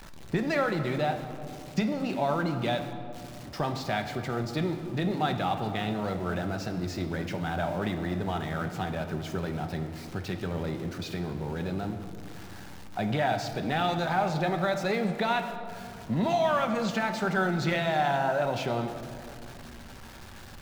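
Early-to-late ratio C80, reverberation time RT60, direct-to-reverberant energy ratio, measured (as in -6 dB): 9.5 dB, 2.6 s, 5.5 dB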